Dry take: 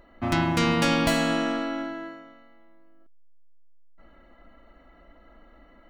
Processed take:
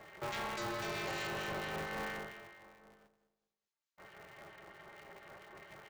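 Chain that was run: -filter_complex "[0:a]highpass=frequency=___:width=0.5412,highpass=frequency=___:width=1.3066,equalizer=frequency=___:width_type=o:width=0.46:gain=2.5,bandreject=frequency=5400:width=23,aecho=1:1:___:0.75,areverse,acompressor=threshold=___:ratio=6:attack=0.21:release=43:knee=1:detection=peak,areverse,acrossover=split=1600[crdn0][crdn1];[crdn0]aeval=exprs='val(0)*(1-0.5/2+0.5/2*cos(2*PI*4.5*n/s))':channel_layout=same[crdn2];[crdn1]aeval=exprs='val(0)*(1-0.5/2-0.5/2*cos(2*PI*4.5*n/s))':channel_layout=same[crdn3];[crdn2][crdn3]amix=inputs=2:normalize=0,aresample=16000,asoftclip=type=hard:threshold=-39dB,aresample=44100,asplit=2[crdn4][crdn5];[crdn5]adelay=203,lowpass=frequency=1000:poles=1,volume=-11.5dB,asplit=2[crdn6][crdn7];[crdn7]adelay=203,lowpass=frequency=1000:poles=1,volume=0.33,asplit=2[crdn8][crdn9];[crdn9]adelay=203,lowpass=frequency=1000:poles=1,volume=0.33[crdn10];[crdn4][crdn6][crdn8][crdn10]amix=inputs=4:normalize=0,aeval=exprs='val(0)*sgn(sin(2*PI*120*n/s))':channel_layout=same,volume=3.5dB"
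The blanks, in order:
330, 330, 1800, 4.1, -35dB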